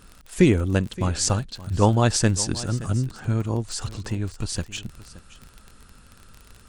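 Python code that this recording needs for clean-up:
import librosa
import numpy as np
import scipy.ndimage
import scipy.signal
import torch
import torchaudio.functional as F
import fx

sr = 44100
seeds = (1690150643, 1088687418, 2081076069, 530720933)

y = fx.fix_declick_ar(x, sr, threshold=6.5)
y = fx.fix_echo_inverse(y, sr, delay_ms=572, level_db=-17.5)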